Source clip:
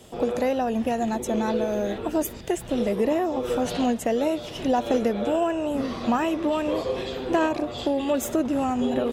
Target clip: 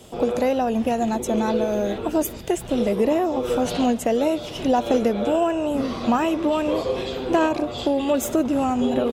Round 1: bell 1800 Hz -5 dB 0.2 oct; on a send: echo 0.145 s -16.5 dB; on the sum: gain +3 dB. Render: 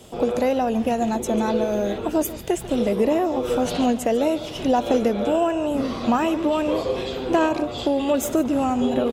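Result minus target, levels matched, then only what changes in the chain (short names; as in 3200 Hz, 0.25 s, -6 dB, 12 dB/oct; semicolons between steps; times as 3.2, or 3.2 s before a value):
echo-to-direct +10 dB
change: echo 0.145 s -26.5 dB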